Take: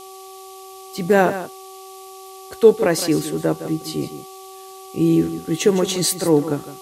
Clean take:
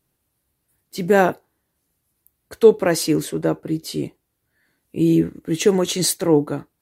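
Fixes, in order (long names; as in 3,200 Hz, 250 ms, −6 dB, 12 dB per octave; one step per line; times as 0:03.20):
hum removal 381.9 Hz, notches 3
noise reduction from a noise print 30 dB
echo removal 160 ms −12 dB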